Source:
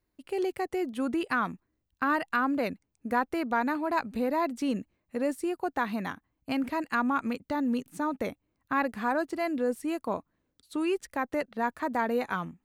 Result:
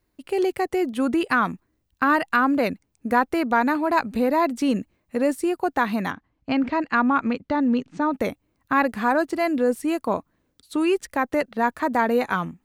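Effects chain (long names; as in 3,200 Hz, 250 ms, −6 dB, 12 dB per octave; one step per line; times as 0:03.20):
0:06.11–0:08.14: Bessel low-pass filter 3,900 Hz, order 8
level +7.5 dB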